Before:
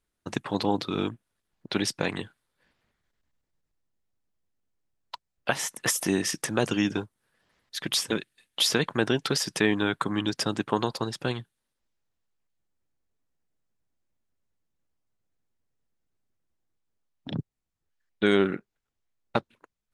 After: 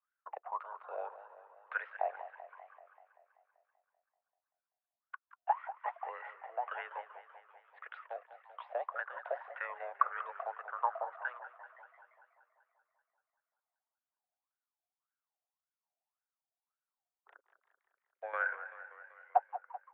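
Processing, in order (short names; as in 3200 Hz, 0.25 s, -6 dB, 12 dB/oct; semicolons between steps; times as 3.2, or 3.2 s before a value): mistuned SSB +130 Hz 390–2500 Hz; wah 1.8 Hz 690–1500 Hz, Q 12; on a send: frequency-shifting echo 0.172 s, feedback 63%, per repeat +110 Hz, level -20 dB; on the sum: tremolo saw down 1.2 Hz, depth 70%; warbling echo 0.193 s, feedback 64%, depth 120 cents, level -13.5 dB; gain +9 dB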